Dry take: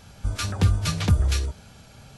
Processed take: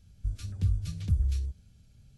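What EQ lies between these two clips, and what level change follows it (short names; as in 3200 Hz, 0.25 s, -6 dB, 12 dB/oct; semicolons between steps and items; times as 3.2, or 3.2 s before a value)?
passive tone stack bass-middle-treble 10-0-1; +2.5 dB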